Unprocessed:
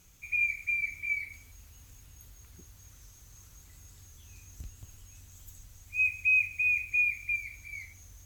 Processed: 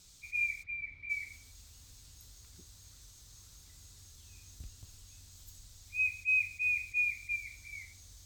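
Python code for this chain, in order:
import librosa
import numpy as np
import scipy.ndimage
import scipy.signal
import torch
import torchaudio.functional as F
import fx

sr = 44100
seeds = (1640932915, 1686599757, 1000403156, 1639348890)

y = fx.dmg_noise_band(x, sr, seeds[0], low_hz=3500.0, high_hz=8600.0, level_db=-57.0)
y = fx.air_absorb(y, sr, metres=410.0, at=(0.62, 1.09), fade=0.02)
y = fx.attack_slew(y, sr, db_per_s=420.0)
y = y * 10.0 ** (-4.0 / 20.0)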